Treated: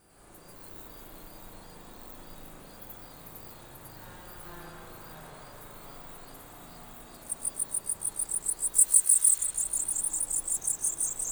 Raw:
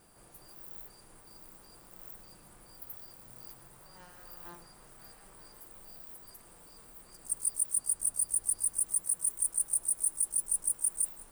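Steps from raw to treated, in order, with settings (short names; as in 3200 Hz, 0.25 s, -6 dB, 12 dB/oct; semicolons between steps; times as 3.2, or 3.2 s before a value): echoes that change speed 99 ms, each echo -2 st, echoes 3; 8.74–9.38 tilt shelf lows -10 dB, about 1200 Hz; spring tank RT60 3 s, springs 37/56 ms, chirp 55 ms, DRR -7 dB; gain -1.5 dB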